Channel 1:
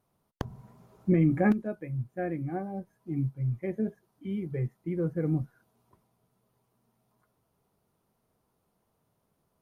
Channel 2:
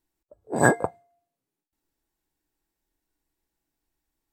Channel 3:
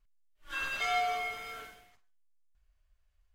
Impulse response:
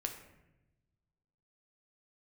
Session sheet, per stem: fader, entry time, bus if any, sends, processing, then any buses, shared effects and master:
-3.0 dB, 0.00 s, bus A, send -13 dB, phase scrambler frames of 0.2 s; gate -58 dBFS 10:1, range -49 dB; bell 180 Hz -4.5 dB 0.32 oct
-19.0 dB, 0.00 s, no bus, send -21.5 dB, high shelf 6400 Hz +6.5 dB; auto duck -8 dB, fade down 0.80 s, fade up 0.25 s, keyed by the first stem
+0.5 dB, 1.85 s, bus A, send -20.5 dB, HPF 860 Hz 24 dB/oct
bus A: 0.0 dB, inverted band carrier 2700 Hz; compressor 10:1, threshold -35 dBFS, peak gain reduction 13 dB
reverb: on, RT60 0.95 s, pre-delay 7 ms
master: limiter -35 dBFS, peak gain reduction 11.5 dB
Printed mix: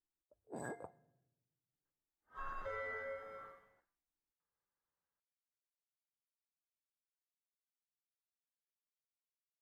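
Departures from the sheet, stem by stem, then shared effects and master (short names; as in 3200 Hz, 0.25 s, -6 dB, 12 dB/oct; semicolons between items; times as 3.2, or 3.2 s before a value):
stem 1: muted; stem 2: missing high shelf 6400 Hz +6.5 dB; stem 3 +0.5 dB -> -7.0 dB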